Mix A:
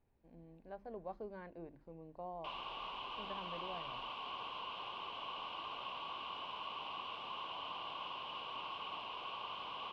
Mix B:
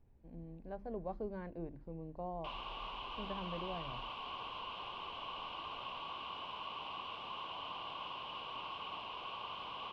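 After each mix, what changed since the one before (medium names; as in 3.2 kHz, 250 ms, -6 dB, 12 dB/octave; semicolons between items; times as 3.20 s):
speech: add bass shelf 490 Hz +7 dB; master: add bass shelf 150 Hz +6.5 dB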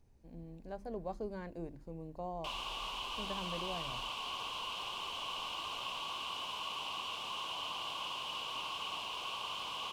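master: remove distance through air 370 m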